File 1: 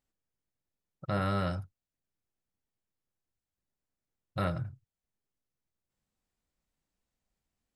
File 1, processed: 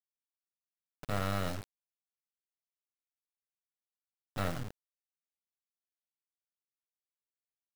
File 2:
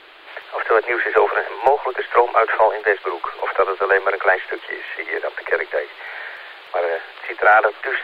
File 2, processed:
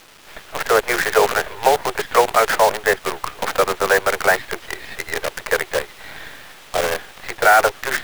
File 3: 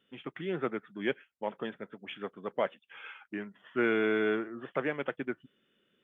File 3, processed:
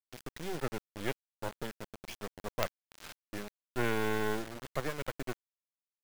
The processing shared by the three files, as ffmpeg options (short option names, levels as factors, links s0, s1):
-af "acrusher=bits=4:dc=4:mix=0:aa=0.000001"